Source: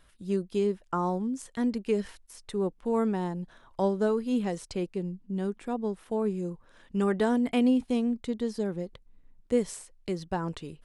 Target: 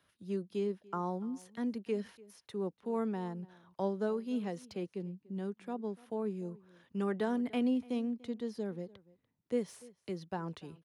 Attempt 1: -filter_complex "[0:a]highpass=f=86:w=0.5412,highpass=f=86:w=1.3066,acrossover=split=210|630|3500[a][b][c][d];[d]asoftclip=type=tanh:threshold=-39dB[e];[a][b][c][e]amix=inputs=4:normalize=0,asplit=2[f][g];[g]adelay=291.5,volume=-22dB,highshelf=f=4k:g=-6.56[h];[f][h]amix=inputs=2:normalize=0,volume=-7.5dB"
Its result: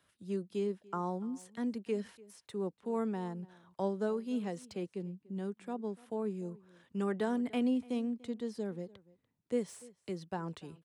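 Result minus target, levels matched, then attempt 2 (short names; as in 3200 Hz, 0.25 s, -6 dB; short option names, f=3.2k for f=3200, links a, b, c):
8000 Hz band +3.0 dB
-filter_complex "[0:a]highpass=f=86:w=0.5412,highpass=f=86:w=1.3066,equalizer=f=7.9k:w=4.4:g=-11,acrossover=split=210|630|3500[a][b][c][d];[d]asoftclip=type=tanh:threshold=-39dB[e];[a][b][c][e]amix=inputs=4:normalize=0,asplit=2[f][g];[g]adelay=291.5,volume=-22dB,highshelf=f=4k:g=-6.56[h];[f][h]amix=inputs=2:normalize=0,volume=-7.5dB"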